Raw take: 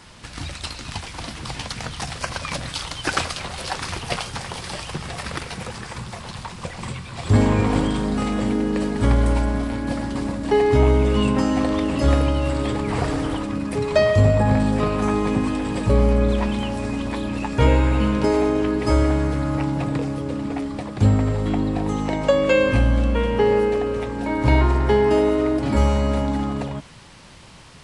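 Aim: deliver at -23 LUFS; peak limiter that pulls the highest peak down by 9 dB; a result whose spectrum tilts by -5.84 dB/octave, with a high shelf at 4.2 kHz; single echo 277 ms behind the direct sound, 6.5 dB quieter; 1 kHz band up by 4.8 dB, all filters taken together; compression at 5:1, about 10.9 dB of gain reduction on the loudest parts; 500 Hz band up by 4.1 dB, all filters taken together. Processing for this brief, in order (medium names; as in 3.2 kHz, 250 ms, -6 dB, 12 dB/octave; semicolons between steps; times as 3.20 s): peaking EQ 500 Hz +4 dB; peaking EQ 1 kHz +5 dB; treble shelf 4.2 kHz -7 dB; compression 5:1, threshold -21 dBFS; peak limiter -17 dBFS; delay 277 ms -6.5 dB; trim +3.5 dB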